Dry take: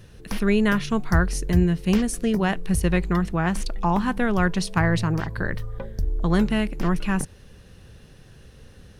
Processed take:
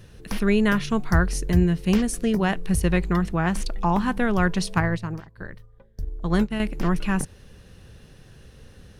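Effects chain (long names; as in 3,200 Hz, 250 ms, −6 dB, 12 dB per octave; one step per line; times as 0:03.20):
0:04.80–0:06.60: expander for the loud parts 2.5 to 1, over −32 dBFS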